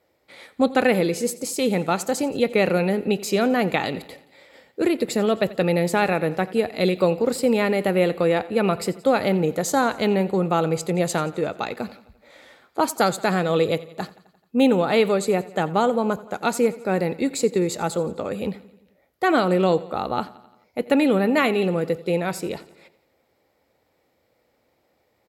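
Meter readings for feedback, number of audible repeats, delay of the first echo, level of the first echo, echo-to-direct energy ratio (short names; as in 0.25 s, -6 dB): 59%, 4, 87 ms, -19.0 dB, -17.0 dB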